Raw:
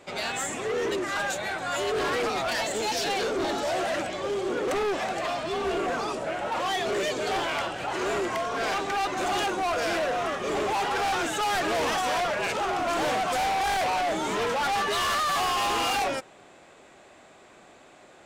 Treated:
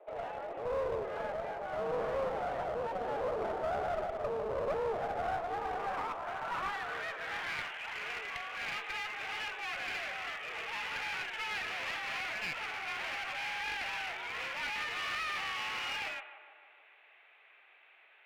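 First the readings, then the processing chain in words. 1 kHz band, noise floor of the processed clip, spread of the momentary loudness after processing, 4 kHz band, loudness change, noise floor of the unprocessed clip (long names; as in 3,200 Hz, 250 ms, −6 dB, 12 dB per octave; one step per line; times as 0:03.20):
−11.5 dB, −62 dBFS, 4 LU, −10.0 dB, −9.5 dB, −53 dBFS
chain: stylus tracing distortion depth 0.29 ms
band-pass filter sweep 540 Hz → 2,300 Hz, 0:04.92–0:07.78
single-sideband voice off tune +54 Hz 250–3,400 Hz
feedback echo with a low-pass in the loop 152 ms, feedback 68%, low-pass 2,200 Hz, level −12 dB
asymmetric clip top −38.5 dBFS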